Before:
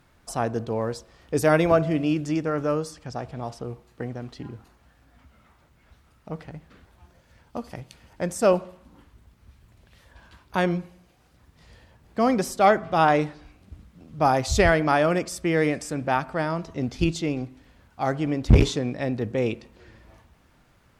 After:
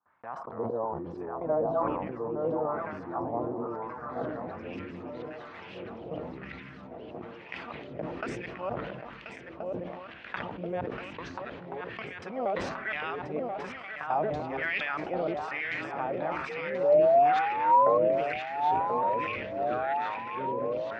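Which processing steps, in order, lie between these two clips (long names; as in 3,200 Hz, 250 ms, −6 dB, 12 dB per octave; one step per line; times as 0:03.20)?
reversed piece by piece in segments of 235 ms
high-pass filter 140 Hz 6 dB per octave
noise gate with hold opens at −52 dBFS
bass and treble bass +11 dB, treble +11 dB
downward compressor 4 to 1, threshold −28 dBFS, peak gain reduction 20 dB
sound drawn into the spectrogram rise, 0:16.49–0:17.98, 460–1,100 Hz −21 dBFS
feedback echo with a long and a short gap by turns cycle 1,377 ms, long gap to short 3 to 1, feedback 60%, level −7 dB
LFO wah 1.1 Hz 510–2,300 Hz, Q 2.1
delay with pitch and tempo change per echo 204 ms, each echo −5 semitones, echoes 3, each echo −6 dB
low-pass filter sweep 1,000 Hz → 2,700 Hz, 0:03.96–0:04.70
level that may fall only so fast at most 35 dB per second
level +2 dB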